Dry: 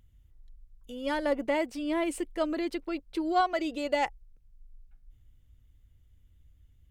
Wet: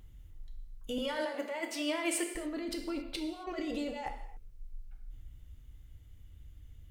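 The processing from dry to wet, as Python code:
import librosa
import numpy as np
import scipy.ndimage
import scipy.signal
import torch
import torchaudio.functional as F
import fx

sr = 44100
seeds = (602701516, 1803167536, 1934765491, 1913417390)

y = fx.highpass(x, sr, hz=630.0, slope=12, at=(0.98, 2.35))
y = fx.over_compress(y, sr, threshold_db=-38.0, ratio=-1.0)
y = fx.rev_gated(y, sr, seeds[0], gate_ms=300, shape='falling', drr_db=3.0)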